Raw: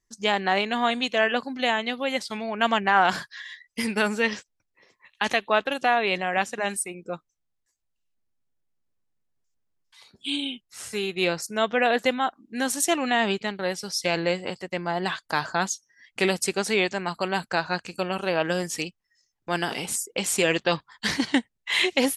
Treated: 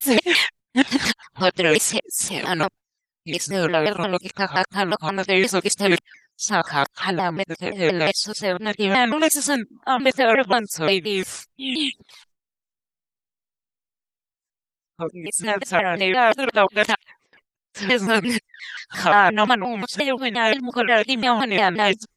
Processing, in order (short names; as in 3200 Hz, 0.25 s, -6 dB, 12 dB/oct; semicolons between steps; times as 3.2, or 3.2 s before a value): whole clip reversed; gate with hold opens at -45 dBFS; shaped vibrato saw down 5.7 Hz, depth 250 cents; gain +5 dB